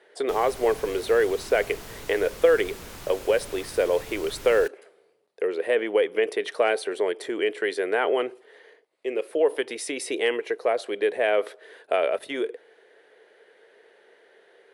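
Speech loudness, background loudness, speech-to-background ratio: -25.5 LUFS, -41.0 LUFS, 15.5 dB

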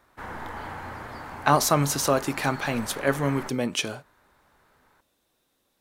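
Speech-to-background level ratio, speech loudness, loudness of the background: 13.5 dB, -25.0 LUFS, -38.5 LUFS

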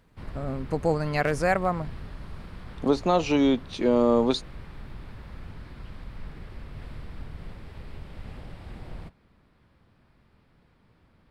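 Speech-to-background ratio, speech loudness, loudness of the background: 18.5 dB, -25.0 LUFS, -43.5 LUFS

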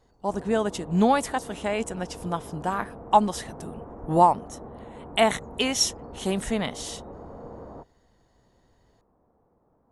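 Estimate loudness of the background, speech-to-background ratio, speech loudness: -42.5 LUFS, 17.0 dB, -25.5 LUFS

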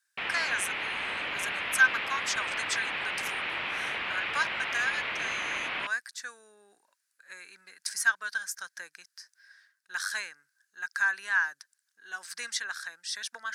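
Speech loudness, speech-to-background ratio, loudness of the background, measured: -31.5 LUFS, 0.0 dB, -31.5 LUFS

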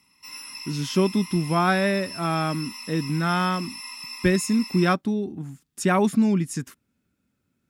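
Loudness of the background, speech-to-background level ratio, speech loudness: -36.0 LUFS, 12.0 dB, -24.0 LUFS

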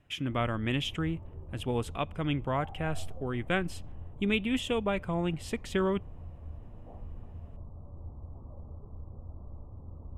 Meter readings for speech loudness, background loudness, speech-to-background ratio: -32.5 LUFS, -47.5 LUFS, 15.0 dB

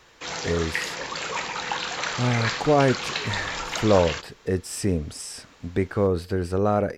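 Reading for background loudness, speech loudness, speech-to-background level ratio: -29.0 LUFS, -25.0 LUFS, 4.0 dB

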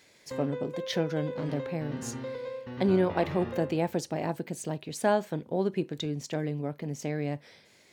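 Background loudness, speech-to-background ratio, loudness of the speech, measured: -38.5 LUFS, 7.0 dB, -31.5 LUFS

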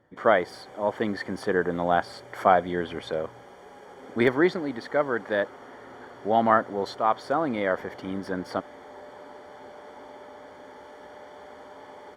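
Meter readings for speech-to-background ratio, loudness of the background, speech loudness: 20.0 dB, -46.0 LUFS, -26.0 LUFS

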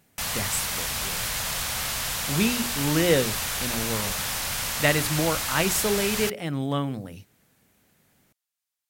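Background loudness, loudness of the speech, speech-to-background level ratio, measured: -27.0 LUFS, -26.5 LUFS, 0.5 dB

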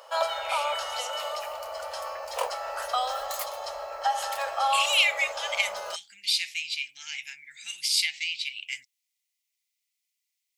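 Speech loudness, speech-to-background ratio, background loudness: -27.5 LUFS, 3.5 dB, -31.0 LUFS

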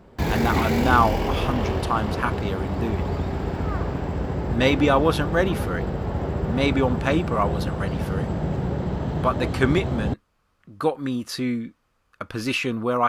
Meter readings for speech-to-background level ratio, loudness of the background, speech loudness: 1.5 dB, -26.5 LUFS, -25.0 LUFS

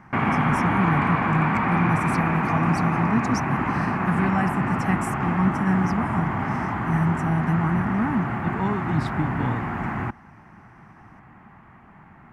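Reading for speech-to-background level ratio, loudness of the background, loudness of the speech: -1.5 dB, -25.0 LUFS, -26.5 LUFS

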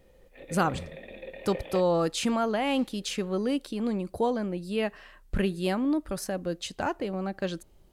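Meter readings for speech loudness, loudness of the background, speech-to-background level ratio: -29.5 LUFS, -42.0 LUFS, 12.5 dB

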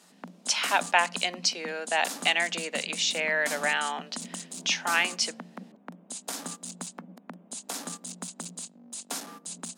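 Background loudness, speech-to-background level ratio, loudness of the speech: -38.0 LUFS, 11.0 dB, -27.0 LUFS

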